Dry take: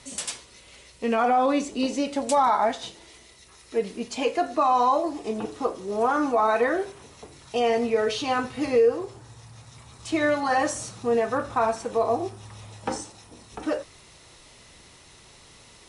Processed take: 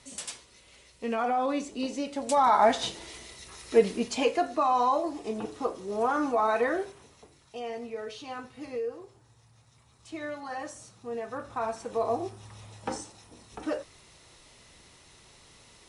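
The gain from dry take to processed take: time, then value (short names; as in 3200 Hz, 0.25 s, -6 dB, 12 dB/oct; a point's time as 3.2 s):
2.17 s -6.5 dB
2.81 s +5 dB
3.79 s +5 dB
4.55 s -4 dB
6.78 s -4 dB
7.57 s -14 dB
11 s -14 dB
12.08 s -4.5 dB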